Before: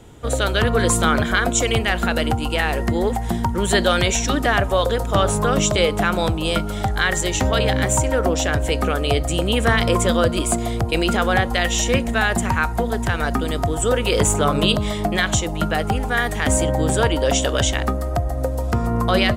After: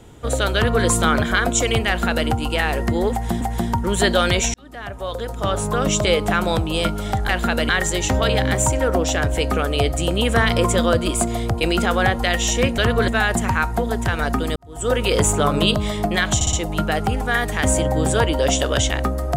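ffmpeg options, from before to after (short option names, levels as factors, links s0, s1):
-filter_complex "[0:a]asplit=11[s0][s1][s2][s3][s4][s5][s6][s7][s8][s9][s10];[s0]atrim=end=3.412[s11];[s1]atrim=start=3.118:end=4.25,asetpts=PTS-STARTPTS,afade=t=out:st=1.128:d=0.004:c=hsin[s12];[s2]atrim=start=4.25:end=7.002,asetpts=PTS-STARTPTS,afade=t=in:d=1.54[s13];[s3]atrim=start=1.878:end=2.282[s14];[s4]atrim=start=6.998:end=12.092[s15];[s5]atrim=start=0.548:end=0.852[s16];[s6]atrim=start=12.088:end=13.57,asetpts=PTS-STARTPTS,afade=t=out:st=1.478:d=0.004:c=hsin[s17];[s7]atrim=start=13.57:end=15.422,asetpts=PTS-STARTPTS,afade=t=in:d=0.36:c=qua[s18];[s8]atrim=start=15.358:end=15.422[s19];[s9]atrim=start=15.358:end=15.422[s20];[s10]atrim=start=15.358[s21];[s12][s13]concat=n=2:v=0:a=1[s22];[s11][s22]acrossfade=d=0.004:c1=hsin:c2=hsin[s23];[s23][s14]acrossfade=d=0.004:c1=hsin:c2=hsin[s24];[s24][s15]acrossfade=d=0.004:c1=hsin:c2=hsin[s25];[s25][s16]acrossfade=d=0.004:c1=hsin:c2=hsin[s26];[s17][s18]concat=n=2:v=0:a=1[s27];[s26][s27]acrossfade=d=0.004:c1=hsin:c2=hsin[s28];[s28][s19]acrossfade=d=0.004:c1=hsin:c2=hsin[s29];[s29][s20]acrossfade=d=0.004:c1=hsin:c2=hsin[s30];[s30][s21]acrossfade=d=0.004:c1=hsin:c2=hsin"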